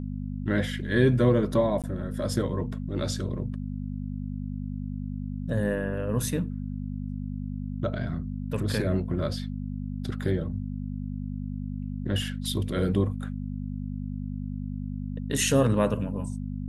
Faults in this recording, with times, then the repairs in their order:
hum 50 Hz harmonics 5 -33 dBFS
1.82–1.84 s: dropout 17 ms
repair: de-hum 50 Hz, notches 5; interpolate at 1.82 s, 17 ms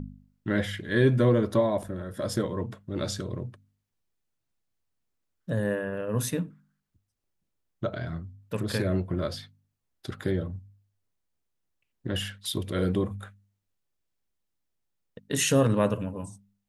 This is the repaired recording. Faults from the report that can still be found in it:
nothing left

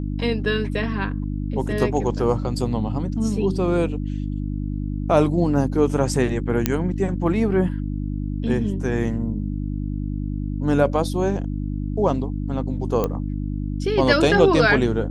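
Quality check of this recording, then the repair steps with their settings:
hum 50 Hz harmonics 6 -26 dBFS
6.66 s: pop -3 dBFS
13.04 s: pop -10 dBFS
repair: de-click; de-hum 50 Hz, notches 6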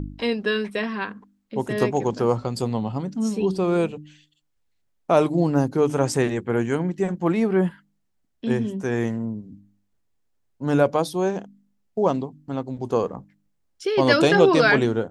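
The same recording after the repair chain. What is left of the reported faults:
nothing left

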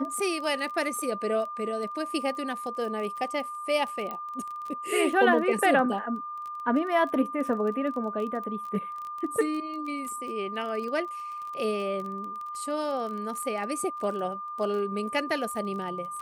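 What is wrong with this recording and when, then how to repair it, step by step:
crackle 21 per s -34 dBFS
whine 1.2 kHz -34 dBFS
4.11 s: pop -21 dBFS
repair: de-click; band-stop 1.2 kHz, Q 30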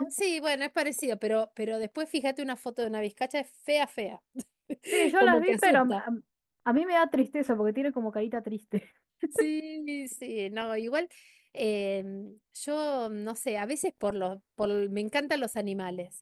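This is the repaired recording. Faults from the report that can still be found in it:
nothing left

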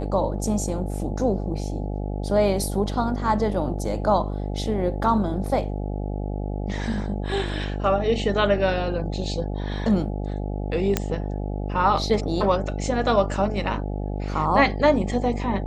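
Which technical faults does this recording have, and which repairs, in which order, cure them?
buzz 50 Hz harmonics 17 -28 dBFS
10.97 s: pop -6 dBFS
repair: de-click; de-hum 50 Hz, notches 17

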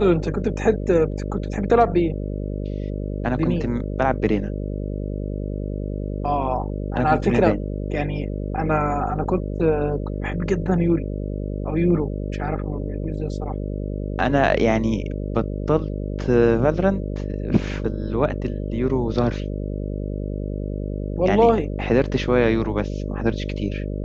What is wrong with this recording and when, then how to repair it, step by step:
buzz 50 Hz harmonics 12 -27 dBFS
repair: de-hum 50 Hz, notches 12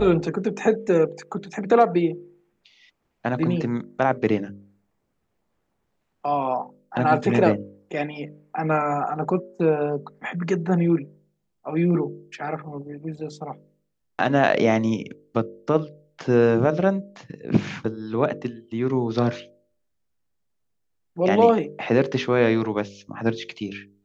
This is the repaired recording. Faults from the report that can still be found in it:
nothing left

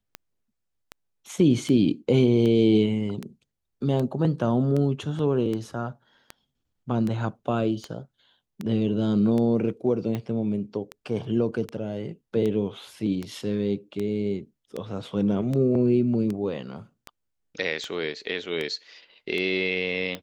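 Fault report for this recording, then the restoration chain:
tick 78 rpm -18 dBFS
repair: de-click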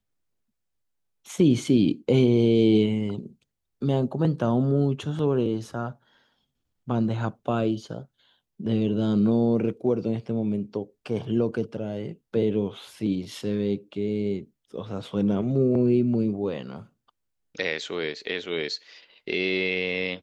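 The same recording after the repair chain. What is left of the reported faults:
nothing left

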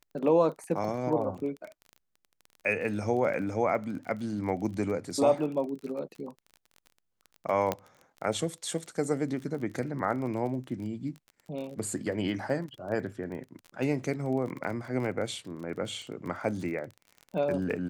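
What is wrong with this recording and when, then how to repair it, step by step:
crackle 27 per s -37 dBFS
7.72 s: pop -14 dBFS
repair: de-click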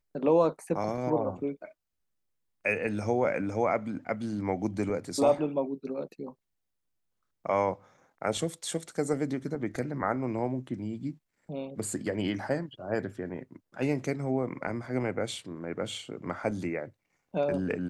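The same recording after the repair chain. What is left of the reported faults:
nothing left

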